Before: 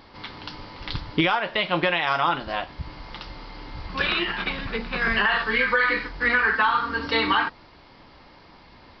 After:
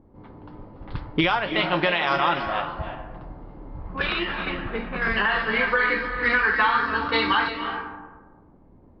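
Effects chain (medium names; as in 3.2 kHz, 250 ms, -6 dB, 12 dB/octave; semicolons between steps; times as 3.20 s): level-controlled noise filter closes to 350 Hz, open at -18.5 dBFS; 3.77–6.04 s: treble shelf 4.5 kHz -10 dB; reverberation RT60 1.4 s, pre-delay 244 ms, DRR 7 dB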